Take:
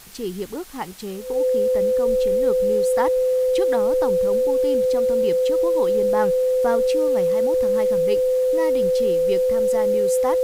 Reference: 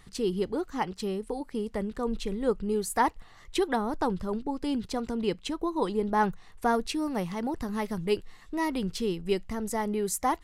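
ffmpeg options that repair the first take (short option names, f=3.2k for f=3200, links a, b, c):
-af "bandreject=f=510:w=30,afwtdn=0.0063"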